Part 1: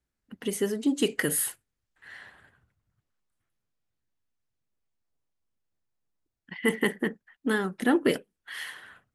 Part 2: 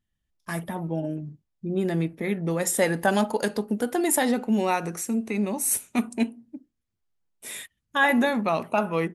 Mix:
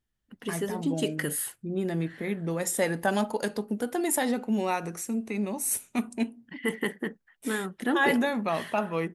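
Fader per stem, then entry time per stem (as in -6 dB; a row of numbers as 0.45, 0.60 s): -4.0, -4.0 dB; 0.00, 0.00 s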